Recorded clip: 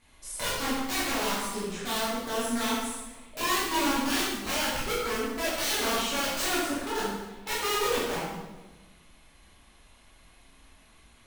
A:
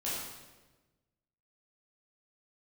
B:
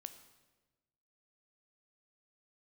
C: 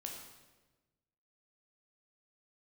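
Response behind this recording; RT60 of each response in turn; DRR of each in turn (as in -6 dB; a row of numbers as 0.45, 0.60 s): A; 1.2, 1.2, 1.2 s; -9.0, 9.5, 0.0 dB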